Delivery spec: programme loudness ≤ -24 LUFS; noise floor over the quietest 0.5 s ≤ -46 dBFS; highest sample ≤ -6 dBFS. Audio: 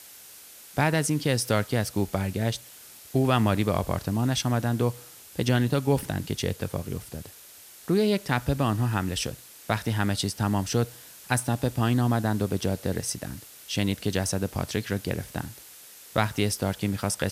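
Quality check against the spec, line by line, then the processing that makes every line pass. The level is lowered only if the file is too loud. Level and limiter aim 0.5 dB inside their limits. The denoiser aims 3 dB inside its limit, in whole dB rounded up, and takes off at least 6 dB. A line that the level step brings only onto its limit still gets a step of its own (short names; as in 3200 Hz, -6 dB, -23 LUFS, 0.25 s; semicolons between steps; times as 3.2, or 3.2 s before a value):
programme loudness -27.0 LUFS: OK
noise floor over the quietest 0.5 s -49 dBFS: OK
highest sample -6.5 dBFS: OK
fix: none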